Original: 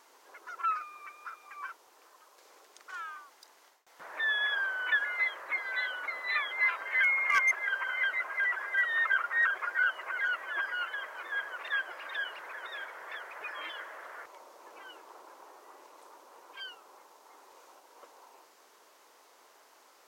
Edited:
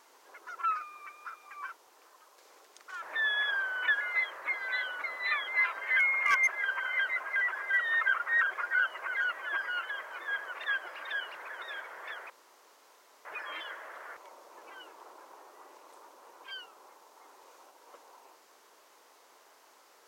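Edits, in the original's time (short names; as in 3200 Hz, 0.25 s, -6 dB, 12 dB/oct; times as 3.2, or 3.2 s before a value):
3.02–4.06 cut
13.34 insert room tone 0.95 s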